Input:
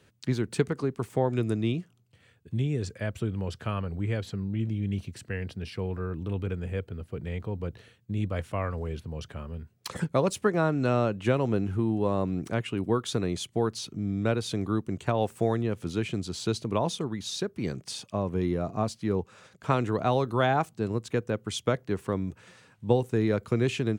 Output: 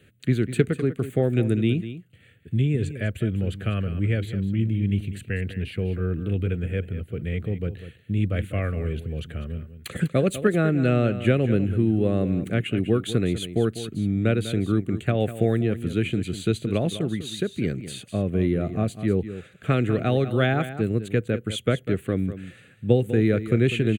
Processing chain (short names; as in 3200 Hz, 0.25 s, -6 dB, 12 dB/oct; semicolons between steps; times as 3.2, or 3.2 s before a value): fixed phaser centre 2300 Hz, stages 4; on a send: echo 0.198 s -12.5 dB; on the sum: gain +6.5 dB